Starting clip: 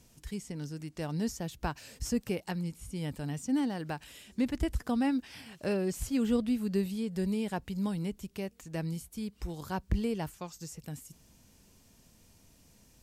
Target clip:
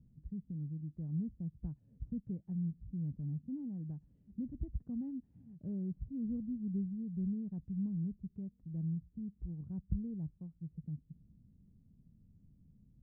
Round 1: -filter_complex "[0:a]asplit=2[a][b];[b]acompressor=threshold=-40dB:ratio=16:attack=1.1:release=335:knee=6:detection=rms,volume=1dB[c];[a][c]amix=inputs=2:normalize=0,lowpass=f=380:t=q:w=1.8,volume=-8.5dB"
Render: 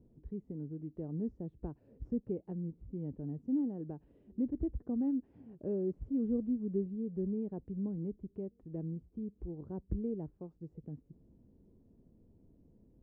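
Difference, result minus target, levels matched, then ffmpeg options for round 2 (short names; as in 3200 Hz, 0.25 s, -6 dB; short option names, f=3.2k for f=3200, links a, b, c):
500 Hz band +15.0 dB
-filter_complex "[0:a]asplit=2[a][b];[b]acompressor=threshold=-40dB:ratio=16:attack=1.1:release=335:knee=6:detection=rms,volume=1dB[c];[a][c]amix=inputs=2:normalize=0,lowpass=f=170:t=q:w=1.8,volume=-8.5dB"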